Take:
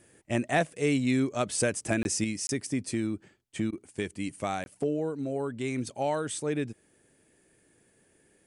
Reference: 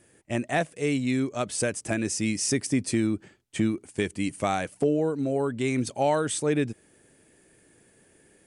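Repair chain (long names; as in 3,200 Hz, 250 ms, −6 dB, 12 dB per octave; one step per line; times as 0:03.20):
repair the gap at 0:02.03/0:02.47/0:04.64, 21 ms
repair the gap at 0:03.71, 14 ms
level 0 dB, from 0:02.24 +5.5 dB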